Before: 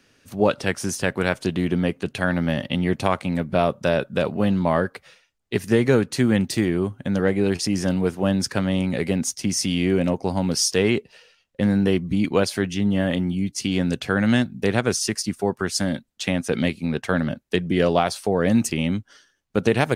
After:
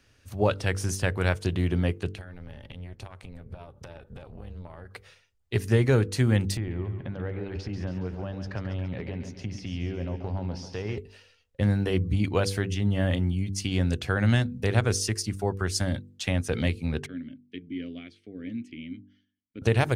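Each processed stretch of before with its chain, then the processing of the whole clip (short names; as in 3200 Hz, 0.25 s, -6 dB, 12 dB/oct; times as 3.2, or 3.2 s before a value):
2.14–4.91 compressor 12:1, threshold -32 dBFS + AM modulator 270 Hz, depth 60%
6.57–10.98 compressor 3:1, threshold -26 dBFS + air absorption 250 m + split-band echo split 300 Hz, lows 0.102 s, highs 0.139 s, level -8.5 dB
17.06–19.62 vowel filter i + high shelf 4200 Hz -7 dB
whole clip: resonant low shelf 130 Hz +11 dB, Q 1.5; de-hum 48.88 Hz, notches 10; gain -4.5 dB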